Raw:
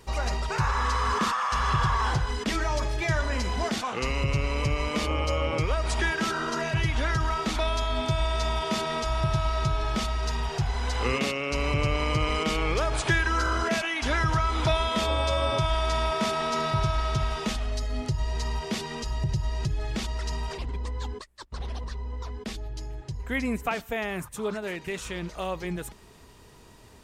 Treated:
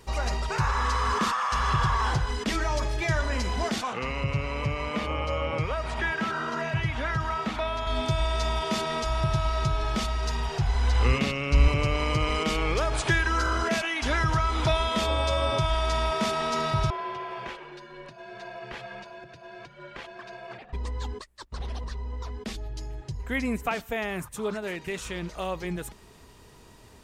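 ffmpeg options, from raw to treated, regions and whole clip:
-filter_complex "[0:a]asettb=1/sr,asplit=3[a][b][c];[a]atrim=end=3.934[d];[b]atrim=start=3.93:end=7.87,asetpts=PTS-STARTPTS,afade=t=in:d=0.004:c=qsin,afade=t=out:st=3.936:d=0.004:c=qsin,highpass=77,equalizer=f=350:t=o:w=0.62:g=-6,acrossover=split=3100[e][f];[f]acompressor=threshold=-50dB:ratio=4:attack=1:release=60[g];[e][g]amix=inputs=2:normalize=0[h];[c]atrim=start=7.866[i];[d][h]acrossfade=d=0.004:c1=hsin:c2=qsin[j];[j][i]acrossfade=d=0.004:c1=qsin:c2=hsin,asettb=1/sr,asplit=3[k][l][m];[k]atrim=end=10.564[n];[l]atrim=start=10.56:end=11.68,asetpts=PTS-STARTPTS,afade=t=in:d=0.004:c=qsin,afade=t=out:st=1.116:d=0.004:c=qsin,acrossover=split=5000[o][p];[p]acompressor=threshold=-45dB:ratio=4:attack=1:release=60[q];[o][q]amix=inputs=2:normalize=0,asubboost=boost=11.5:cutoff=190[r];[m]atrim=start=11.676[s];[n][r]acrossfade=d=0.004:c1=hsin:c2=qsin[t];[t][s]acrossfade=d=0.004:c1=qsin:c2=hsin,asettb=1/sr,asplit=3[u][v][w];[u]atrim=end=16.904[x];[v]atrim=start=16.9:end=20.73,asetpts=PTS-STARTPTS,afade=t=in:d=0.004:c=qsin,afade=t=out:st=3.826:d=0.004:c=qsin,highpass=160,acrossover=split=560 2900:gain=0.0708 1 0.0891[y][z][aa];[y][z][aa]amix=inputs=3:normalize=0,afreqshift=-270[ab];[w]atrim=start=20.726[ac];[x][ab]acrossfade=d=0.004:c1=hsin:c2=qsin[ad];[ad][ac]acrossfade=d=0.004:c1=qsin:c2=hsin"

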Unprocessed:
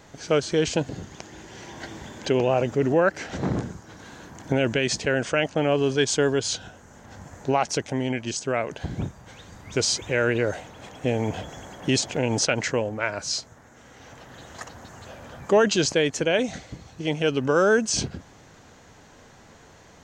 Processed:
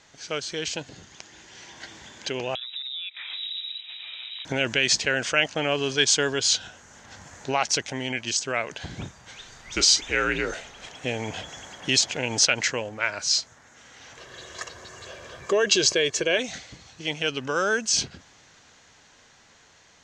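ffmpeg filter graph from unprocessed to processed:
-filter_complex "[0:a]asettb=1/sr,asplit=3[a][b][c];[a]atrim=end=2.554[d];[b]atrim=start=2.55:end=4.45,asetpts=PTS-STARTPTS,afade=t=in:d=0.004:c=qsin,afade=t=out:st=1.896:d=0.004:c=qsin,acompressor=threshold=-34dB:ratio=10:attack=3.2:release=140:knee=1:detection=peak,lowpass=f=3.4k:t=q:w=0.5098,lowpass=f=3.4k:t=q:w=0.6013,lowpass=f=3.4k:t=q:w=0.9,lowpass=f=3.4k:t=q:w=2.563,afreqshift=-4000[e];[c]atrim=start=4.446[f];[d][e]acrossfade=d=0.004:c1=hsin:c2=qsin[g];[g][f]acrossfade=d=0.004:c1=qsin:c2=hsin,asettb=1/sr,asplit=3[h][i][j];[h]atrim=end=9.374[k];[i]atrim=start=9.37:end=10.93,asetpts=PTS-STARTPTS,afade=t=in:d=0.004:c=qsin,afade=t=out:st=1.556:d=0.004:c=qsin,afreqshift=-65,asplit=2[l][m];[m]adelay=31,volume=-12dB[n];[l][n]amix=inputs=2:normalize=0,atrim=end_sample=68796[o];[j]atrim=start=10.926[p];[k][o]acrossfade=d=0.004:c1=hsin:c2=qsin[q];[q][p]acrossfade=d=0.004:c1=qsin:c2=hsin,asettb=1/sr,asplit=3[r][s][t];[r]atrim=end=14.174[u];[s]atrim=start=14.17:end=16.37,asetpts=PTS-STARTPTS,afade=t=in:d=0.004:c=qsin,afade=t=out:st=2.196:d=0.004:c=qsin,equalizer=f=360:w=2.7:g=13,aecho=1:1:1.8:0.55,atrim=end_sample=97020,acompressor=threshold=-15dB:ratio=2:attack=3.2:release=140:knee=1:detection=peak[v];[t]atrim=start=16.366[w];[u][v]acrossfade=d=0.004:c1=hsin:c2=qsin[x];[x][w]acrossfade=d=0.004:c1=qsin:c2=hsin,lowpass=6.5k,tiltshelf=f=1.3k:g=-8,dynaudnorm=f=770:g=9:m=11.5dB,volume=-5dB"

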